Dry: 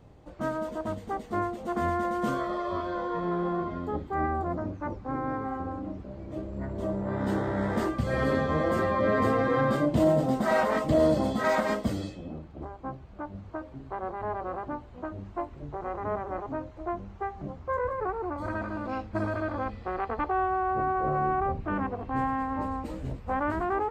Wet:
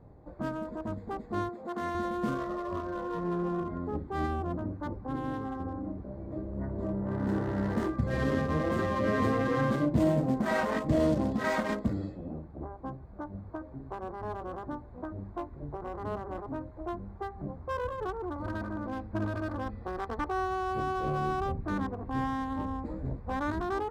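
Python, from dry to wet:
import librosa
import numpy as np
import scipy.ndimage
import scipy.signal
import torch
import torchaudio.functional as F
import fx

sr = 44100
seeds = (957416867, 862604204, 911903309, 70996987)

y = fx.highpass(x, sr, hz=370.0, slope=6, at=(1.49, 1.95))
y = fx.wiener(y, sr, points=15)
y = fx.notch(y, sr, hz=1300.0, q=20.0)
y = fx.dynamic_eq(y, sr, hz=670.0, q=1.1, threshold_db=-41.0, ratio=4.0, max_db=-6)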